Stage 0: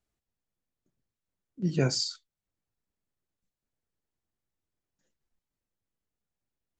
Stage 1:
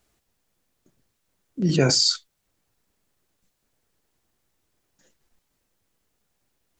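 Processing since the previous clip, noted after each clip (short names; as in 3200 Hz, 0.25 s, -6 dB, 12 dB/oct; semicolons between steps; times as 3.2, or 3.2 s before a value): tone controls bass -4 dB, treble +1 dB; in parallel at -1 dB: negative-ratio compressor -35 dBFS, ratio -0.5; on the sum: gain +7.5 dB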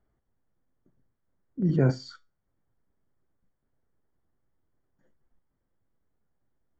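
polynomial smoothing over 41 samples; low shelf 320 Hz +7.5 dB; resonator 130 Hz, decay 0.29 s, harmonics all, mix 40%; gain -4.5 dB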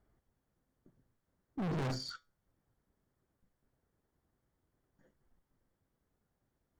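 in parallel at -2.5 dB: limiter -19 dBFS, peak gain reduction 7.5 dB; on the sum: tube stage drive 25 dB, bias 0.65; hard clip -34 dBFS, distortion -8 dB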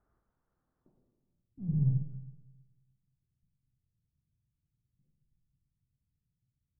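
low-pass sweep 1300 Hz -> 130 Hz, 0.78–1.4; reverb RT60 1.4 s, pre-delay 36 ms, DRR 3 dB; upward expander 1.5:1, over -42 dBFS; gain +3.5 dB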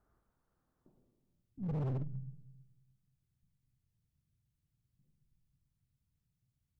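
overloaded stage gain 34.5 dB; gain +1 dB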